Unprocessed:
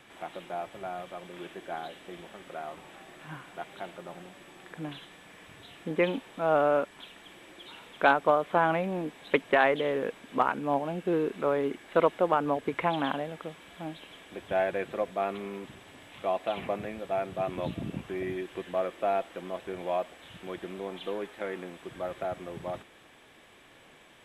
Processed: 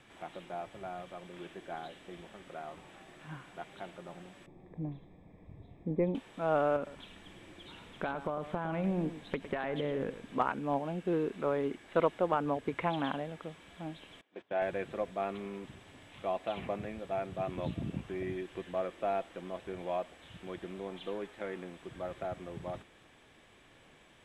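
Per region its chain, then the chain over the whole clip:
4.46–6.15 s: boxcar filter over 30 samples + bass shelf 140 Hz +10 dB
6.76–10.34 s: compression 5:1, threshold -28 dBFS + bass shelf 230 Hz +9 dB + delay 108 ms -12 dB
14.21–14.62 s: gate -45 dBFS, range -18 dB + high-pass 260 Hz + distance through air 140 m
whole clip: Chebyshev low-pass 8.6 kHz, order 2; bass shelf 170 Hz +8.5 dB; trim -4.5 dB

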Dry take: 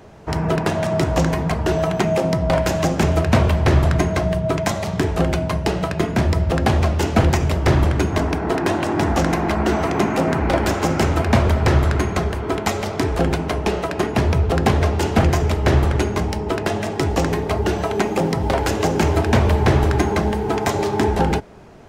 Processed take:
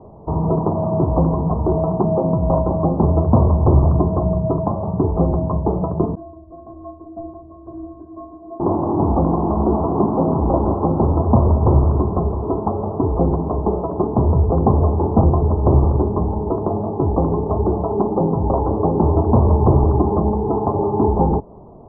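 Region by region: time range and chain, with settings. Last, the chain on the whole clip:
6.15–8.60 s: band-stop 850 Hz, Q 5.3 + inharmonic resonator 320 Hz, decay 0.48 s, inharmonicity 0.03
whole clip: steep low-pass 1.1 kHz 72 dB/octave; dynamic bell 640 Hz, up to -3 dB, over -32 dBFS, Q 2.6; trim +2.5 dB

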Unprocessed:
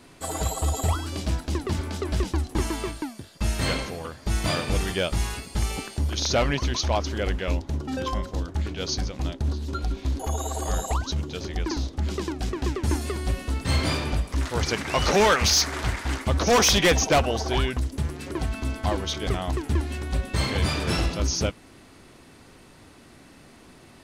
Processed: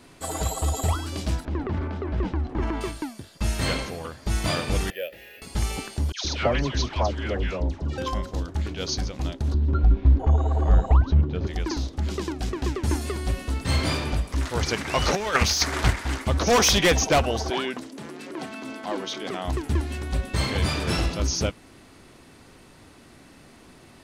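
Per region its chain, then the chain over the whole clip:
1.45–2.81 s: low-pass 1.8 kHz + transient shaper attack -4 dB, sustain +6 dB
4.90–5.42 s: vowel filter e + peaking EQ 2.6 kHz +5 dB 1.8 oct + careless resampling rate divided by 3×, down none, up hold
6.12–7.98 s: distance through air 78 m + phase dispersion lows, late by 127 ms, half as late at 1.2 kHz
9.54–11.47 s: low-pass 2 kHz + bass shelf 230 Hz +11 dB
15.15–15.93 s: compressor with a negative ratio -22 dBFS, ratio -0.5 + transient shaper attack +5 dB, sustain -1 dB
17.50–19.45 s: high-pass 200 Hz 24 dB/octave + treble shelf 8.1 kHz -8.5 dB + transient shaper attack -7 dB, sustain +1 dB
whole clip: none

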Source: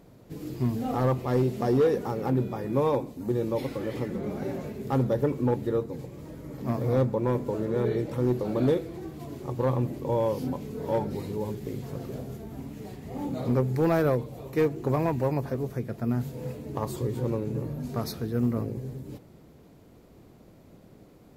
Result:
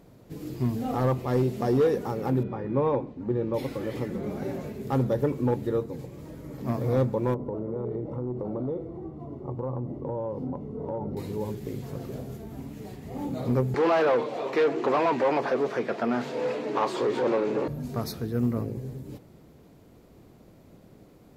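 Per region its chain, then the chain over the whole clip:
2.43–3.54 s: low-pass 2.3 kHz + band-stop 670 Hz
7.34–11.17 s: Savitzky-Golay filter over 65 samples + compression, threshold -27 dBFS
13.74–17.68 s: tilt EQ +2 dB/octave + overdrive pedal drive 26 dB, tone 1.3 kHz, clips at -13.5 dBFS + band-pass 220–5000 Hz
whole clip: none

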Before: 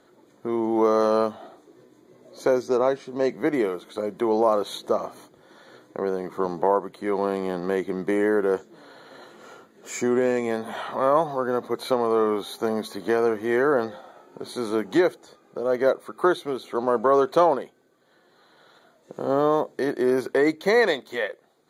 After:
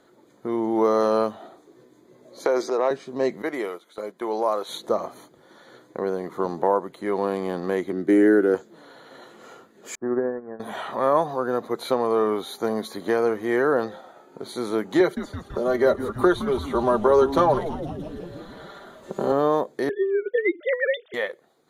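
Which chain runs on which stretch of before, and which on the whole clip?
2.45–2.91 s: treble shelf 7 kHz -9.5 dB + transient shaper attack 0 dB, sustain +10 dB + high-pass 400 Hz
3.42–4.69 s: high-pass 640 Hz 6 dB/octave + gate -39 dBFS, range -8 dB
7.92–8.55 s: peaking EQ 1 kHz -12.5 dB 0.41 oct + small resonant body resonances 310/1500 Hz, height 10 dB, ringing for 30 ms + three bands expanded up and down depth 40%
9.95–10.60 s: median filter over 25 samples + Chebyshev low-pass 1.8 kHz, order 6 + upward expansion 2.5:1, over -42 dBFS
15.00–19.32 s: comb 5.1 ms, depth 72% + frequency-shifting echo 166 ms, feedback 62%, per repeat -140 Hz, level -13 dB + three bands compressed up and down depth 40%
19.89–21.14 s: formants replaced by sine waves + compressor with a negative ratio -21 dBFS, ratio -0.5
whole clip: none

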